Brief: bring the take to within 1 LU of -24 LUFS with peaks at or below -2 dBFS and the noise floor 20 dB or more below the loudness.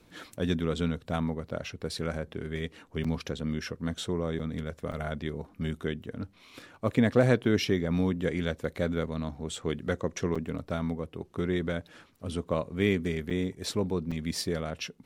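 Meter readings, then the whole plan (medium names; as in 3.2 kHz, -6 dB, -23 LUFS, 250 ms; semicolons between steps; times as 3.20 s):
dropouts 6; longest dropout 5.4 ms; loudness -31.5 LUFS; peak level -10.0 dBFS; loudness target -24.0 LUFS
-> interpolate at 3.04/4.39/4.92/10.35/13.30/14.11 s, 5.4 ms; trim +7.5 dB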